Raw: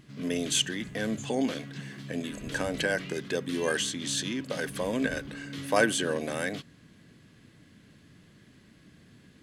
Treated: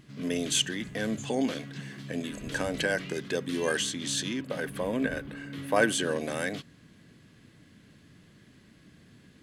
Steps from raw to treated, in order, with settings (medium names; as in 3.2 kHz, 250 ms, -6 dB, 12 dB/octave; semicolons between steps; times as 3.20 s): 4.41–5.82 s: peaking EQ 6 kHz -10 dB 1.5 oct